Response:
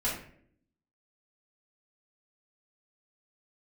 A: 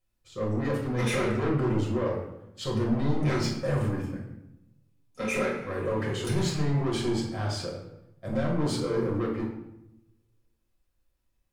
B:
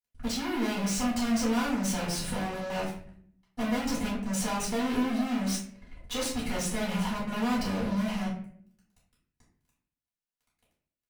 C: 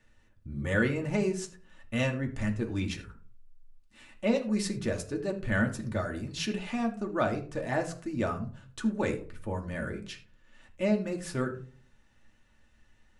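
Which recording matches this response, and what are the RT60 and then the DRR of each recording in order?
B; 0.85, 0.60, 0.45 seconds; −4.0, −8.0, 1.5 decibels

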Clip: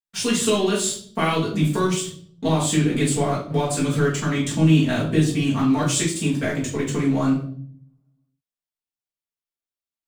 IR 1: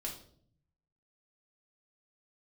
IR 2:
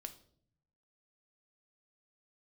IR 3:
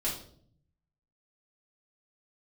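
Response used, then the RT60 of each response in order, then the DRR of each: 3; 0.60, 0.60, 0.60 seconds; −2.0, 7.0, −7.5 decibels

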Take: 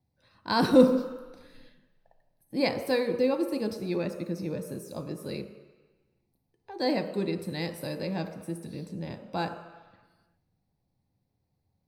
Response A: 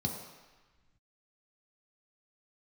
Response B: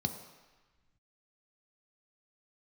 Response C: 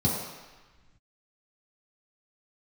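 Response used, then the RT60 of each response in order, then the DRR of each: B; 1.2, 1.2, 1.2 seconds; 0.0, 5.5, −7.5 decibels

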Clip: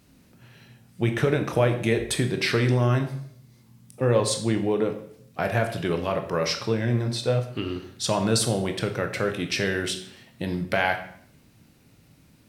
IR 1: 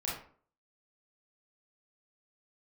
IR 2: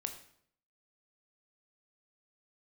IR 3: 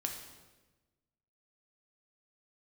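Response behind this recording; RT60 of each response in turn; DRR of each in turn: 2; 0.50, 0.65, 1.2 seconds; −6.5, 5.5, 2.0 decibels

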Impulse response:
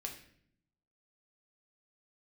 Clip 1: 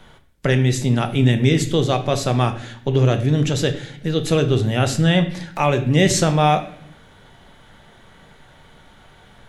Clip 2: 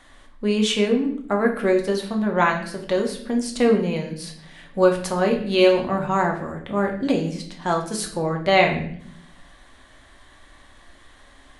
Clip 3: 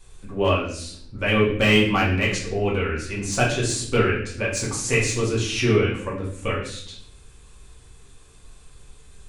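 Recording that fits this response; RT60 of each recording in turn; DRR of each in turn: 2; 0.65, 0.60, 0.60 seconds; 6.5, 1.0, −6.0 decibels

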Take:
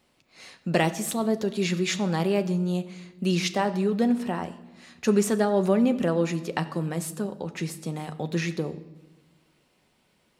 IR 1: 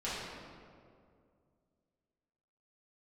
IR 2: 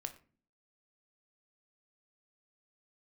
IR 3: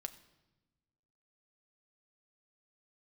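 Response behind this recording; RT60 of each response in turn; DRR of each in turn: 3; 2.2, 0.40, 1.1 seconds; −11.0, 7.5, 8.0 decibels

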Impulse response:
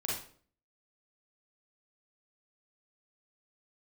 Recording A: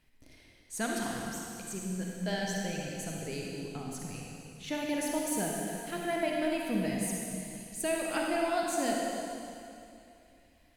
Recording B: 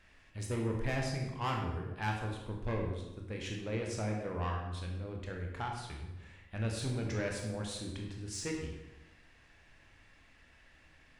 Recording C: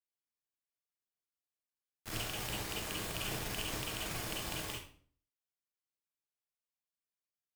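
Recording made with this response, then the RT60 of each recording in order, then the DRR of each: C; 2.7, 1.0, 0.50 seconds; −2.0, 0.0, −5.0 decibels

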